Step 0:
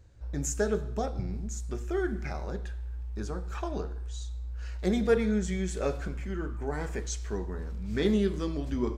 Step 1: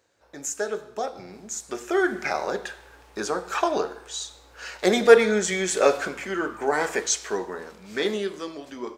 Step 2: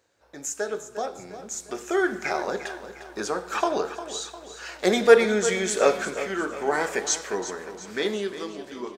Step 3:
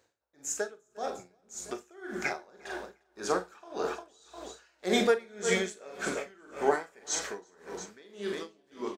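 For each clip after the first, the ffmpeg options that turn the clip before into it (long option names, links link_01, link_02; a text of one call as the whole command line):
ffmpeg -i in.wav -af "highpass=480,dynaudnorm=framelen=310:gausssize=11:maxgain=12.5dB,volume=3dB" out.wav
ffmpeg -i in.wav -af "aecho=1:1:353|706|1059|1412|1765:0.237|0.111|0.0524|0.0246|0.0116,volume=-1dB" out.wav
ffmpeg -i in.wav -filter_complex "[0:a]asplit=2[link_01][link_02];[link_02]adelay=44,volume=-8dB[link_03];[link_01][link_03]amix=inputs=2:normalize=0,aeval=exprs='val(0)*pow(10,-30*(0.5-0.5*cos(2*PI*1.8*n/s))/20)':channel_layout=same" out.wav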